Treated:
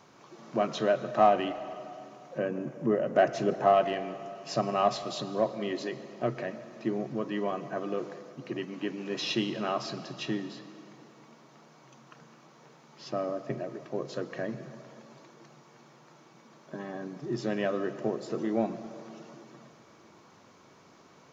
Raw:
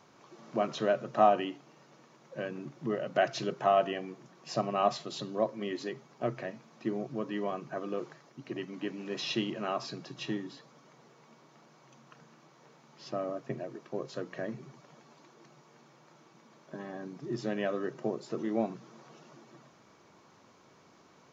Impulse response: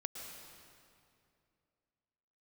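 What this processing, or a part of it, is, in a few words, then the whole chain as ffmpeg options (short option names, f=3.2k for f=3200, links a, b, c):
saturated reverb return: -filter_complex "[0:a]asettb=1/sr,asplit=3[a][b][c];[a]atrim=end=2.384[d];[b]atrim=start=2.38:end=3.74,asetpts=PTS-STARTPTS,afade=t=in:d=0.004:c=qsin,afade=t=out:st=1.356:d=0.004:c=qsin,equalizer=f=250:t=o:w=1:g=4,equalizer=f=500:t=o:w=1:g=4,equalizer=f=4k:t=o:w=1:g=-10[e];[c]atrim=start=3.736[f];[d][e]acrossfade=d=0.004:c1=hsin:c2=qsin[g];[g][f]acrossfade=d=0.004:c1=qsin:c2=hsin,asplit=2[h][i];[1:a]atrim=start_sample=2205[j];[i][j]afir=irnorm=-1:irlink=0,asoftclip=type=tanh:threshold=-27dB,volume=-4.5dB[k];[h][k]amix=inputs=2:normalize=0"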